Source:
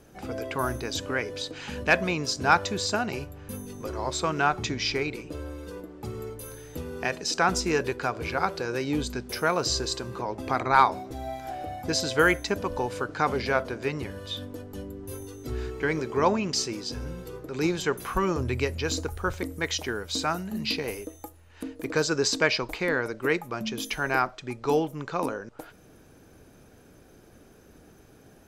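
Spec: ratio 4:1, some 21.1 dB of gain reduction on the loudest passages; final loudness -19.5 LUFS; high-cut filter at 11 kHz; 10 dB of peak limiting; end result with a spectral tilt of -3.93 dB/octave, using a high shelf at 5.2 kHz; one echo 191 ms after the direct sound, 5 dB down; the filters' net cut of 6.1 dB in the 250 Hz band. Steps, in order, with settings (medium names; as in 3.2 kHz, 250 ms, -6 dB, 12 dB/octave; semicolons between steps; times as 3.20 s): low-pass 11 kHz; peaking EQ 250 Hz -9 dB; treble shelf 5.2 kHz -3 dB; compression 4:1, threshold -41 dBFS; peak limiter -33 dBFS; delay 191 ms -5 dB; trim +24 dB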